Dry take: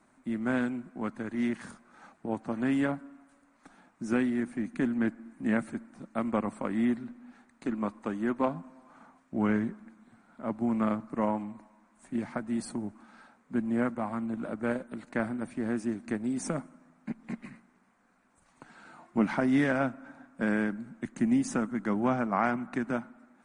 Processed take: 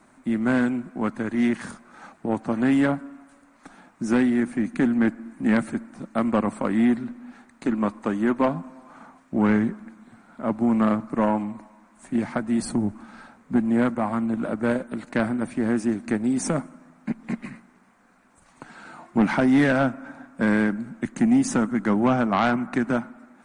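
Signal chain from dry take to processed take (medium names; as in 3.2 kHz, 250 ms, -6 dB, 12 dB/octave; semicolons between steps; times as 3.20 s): 12.62–13.58 s: bass shelf 170 Hz +9 dB; in parallel at -6 dB: sine folder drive 7 dB, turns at -13 dBFS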